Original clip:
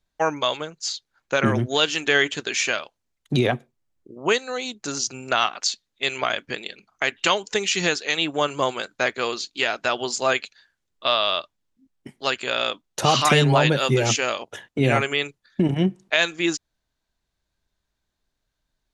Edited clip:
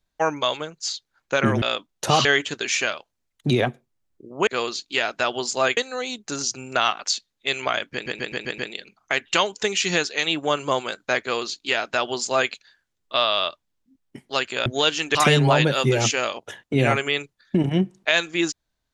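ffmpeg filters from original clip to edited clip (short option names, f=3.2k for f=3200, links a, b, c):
-filter_complex "[0:a]asplit=12[a][b][c][d][e][f][g][h][i][j][k][l];[a]atrim=end=1.622[m];[b]atrim=start=12.568:end=13.202[n];[c]atrim=start=2.108:end=4.332[o];[d]atrim=start=9.118:end=10.422[p];[e]atrim=start=4.328:end=6.622[q];[f]atrim=start=6.488:end=6.622[r];[g]atrim=start=6.488:end=6.622[s];[h]atrim=start=6.488:end=6.622[t];[i]atrim=start=6.488:end=6.622[u];[j]atrim=start=6.488:end=12.572[v];[k]atrim=start=1.618:end=2.112[w];[l]atrim=start=13.198[x];[m][n]acrossfade=d=0.004:c1=hsin:c2=hsin[y];[y][o]acrossfade=d=0.004:c1=hsin:c2=hsin[z];[z][p]acrossfade=d=0.004:c1=hsin:c2=hsin[aa];[aa][q]acrossfade=d=0.004:c1=hsin:c2=hsin[ab];[ab][r]acrossfade=d=0.004:c1=hsin:c2=hsin[ac];[ac][s]acrossfade=d=0.004:c1=hsin:c2=hsin[ad];[ad][t]acrossfade=d=0.004:c1=hsin:c2=hsin[ae];[ae][u]acrossfade=d=0.004:c1=hsin:c2=hsin[af];[af][v]acrossfade=d=0.004:c1=hsin:c2=hsin[ag];[ag][w]acrossfade=d=0.004:c1=hsin:c2=hsin[ah];[ah][x]acrossfade=d=0.004:c1=hsin:c2=hsin"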